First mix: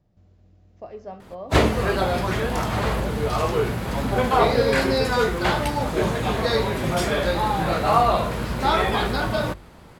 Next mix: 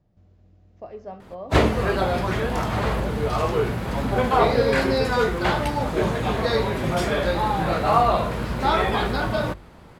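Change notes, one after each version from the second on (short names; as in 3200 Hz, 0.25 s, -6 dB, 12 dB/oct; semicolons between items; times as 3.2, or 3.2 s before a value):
master: add high shelf 4400 Hz -5.5 dB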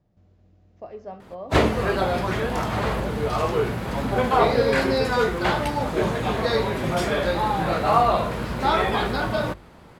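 master: add low shelf 87 Hz -5 dB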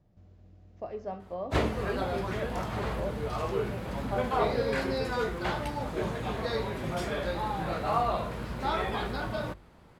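background -9.5 dB; master: add low shelf 87 Hz +5 dB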